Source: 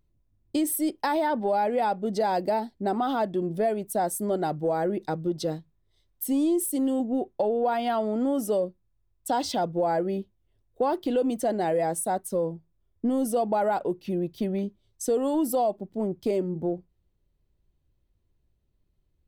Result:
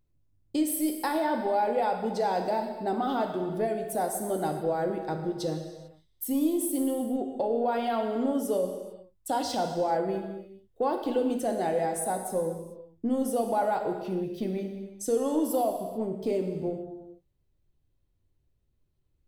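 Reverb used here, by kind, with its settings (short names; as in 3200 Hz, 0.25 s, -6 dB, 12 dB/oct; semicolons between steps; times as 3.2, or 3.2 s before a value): non-linear reverb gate 0.47 s falling, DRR 3.5 dB; gain -3.5 dB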